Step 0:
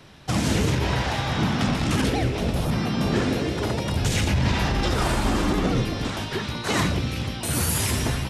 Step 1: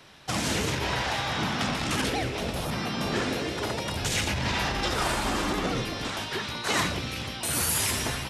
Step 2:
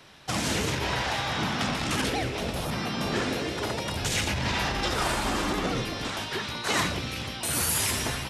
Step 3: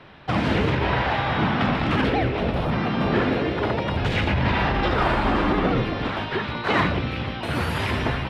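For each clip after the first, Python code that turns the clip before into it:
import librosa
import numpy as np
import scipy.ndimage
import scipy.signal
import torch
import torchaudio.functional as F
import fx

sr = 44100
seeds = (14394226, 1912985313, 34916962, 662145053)

y1 = fx.low_shelf(x, sr, hz=380.0, db=-10.5)
y2 = y1
y3 = fx.air_absorb(y2, sr, metres=410.0)
y3 = F.gain(torch.from_numpy(y3), 8.5).numpy()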